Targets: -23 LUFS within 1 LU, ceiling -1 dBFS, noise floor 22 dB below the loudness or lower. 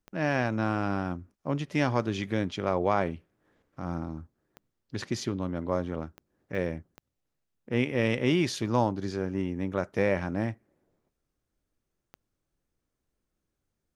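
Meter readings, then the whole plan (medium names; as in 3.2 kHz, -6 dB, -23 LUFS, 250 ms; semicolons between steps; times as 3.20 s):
clicks found 6; loudness -30.0 LUFS; peak level -10.5 dBFS; loudness target -23.0 LUFS
-> de-click; trim +7 dB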